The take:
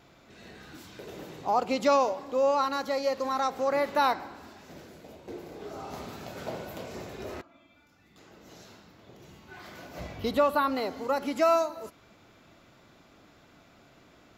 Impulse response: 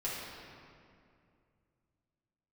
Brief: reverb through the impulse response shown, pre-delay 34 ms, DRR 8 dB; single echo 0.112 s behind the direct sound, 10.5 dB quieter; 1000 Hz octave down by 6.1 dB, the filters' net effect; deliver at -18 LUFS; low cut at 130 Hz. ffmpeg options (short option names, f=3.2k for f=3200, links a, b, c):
-filter_complex "[0:a]highpass=130,equalizer=f=1k:t=o:g=-8,aecho=1:1:112:0.299,asplit=2[a][b];[1:a]atrim=start_sample=2205,adelay=34[c];[b][c]afir=irnorm=-1:irlink=0,volume=-12.5dB[d];[a][d]amix=inputs=2:normalize=0,volume=13dB"